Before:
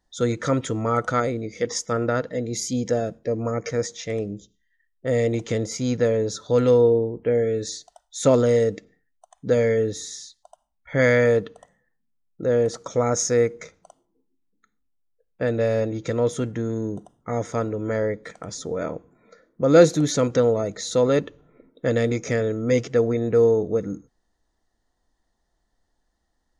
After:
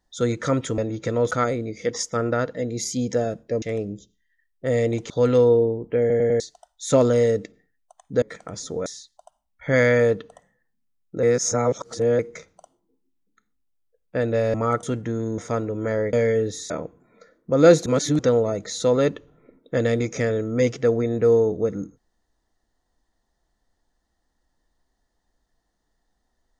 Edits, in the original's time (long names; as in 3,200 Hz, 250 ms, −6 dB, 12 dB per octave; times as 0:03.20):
0:00.78–0:01.07: swap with 0:15.80–0:16.33
0:03.38–0:04.03: remove
0:05.51–0:06.43: remove
0:07.33: stutter in place 0.10 s, 4 plays
0:09.55–0:10.12: swap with 0:18.17–0:18.81
0:12.49–0:13.45: reverse
0:16.88–0:17.42: remove
0:19.97–0:20.30: reverse